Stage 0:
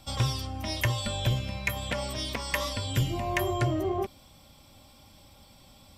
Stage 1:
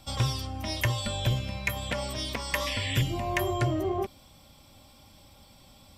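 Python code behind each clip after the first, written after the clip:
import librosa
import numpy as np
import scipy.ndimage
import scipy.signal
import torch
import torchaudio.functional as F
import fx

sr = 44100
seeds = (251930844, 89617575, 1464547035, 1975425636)

y = fx.spec_paint(x, sr, seeds[0], shape='noise', start_s=2.66, length_s=0.36, low_hz=1700.0, high_hz=3600.0, level_db=-35.0)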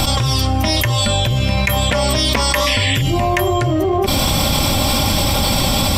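y = fx.env_flatten(x, sr, amount_pct=100)
y = y * 10.0 ** (5.5 / 20.0)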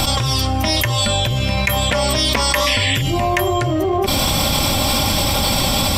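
y = fx.low_shelf(x, sr, hz=390.0, db=-3.0)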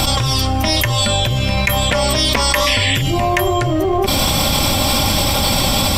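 y = fx.dmg_noise_colour(x, sr, seeds[1], colour='brown', level_db=-32.0)
y = y * 10.0 ** (1.5 / 20.0)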